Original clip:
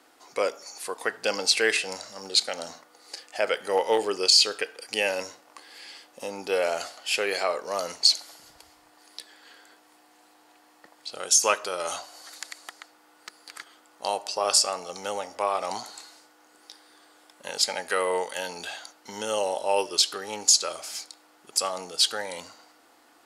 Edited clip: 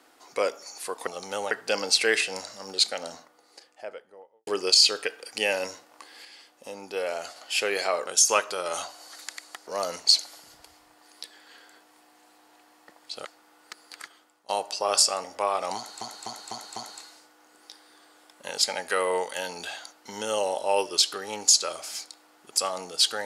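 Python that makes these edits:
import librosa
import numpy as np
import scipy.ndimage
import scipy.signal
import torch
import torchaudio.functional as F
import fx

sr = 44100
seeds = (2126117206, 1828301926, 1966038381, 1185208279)

y = fx.studio_fade_out(x, sr, start_s=2.3, length_s=1.73)
y = fx.edit(y, sr, fx.clip_gain(start_s=5.81, length_s=1.11, db=-5.0),
    fx.move(start_s=11.21, length_s=1.6, to_s=7.63),
    fx.fade_out_to(start_s=13.55, length_s=0.5, floor_db=-18.0),
    fx.move(start_s=14.8, length_s=0.44, to_s=1.07),
    fx.repeat(start_s=15.76, length_s=0.25, count=5), tone=tone)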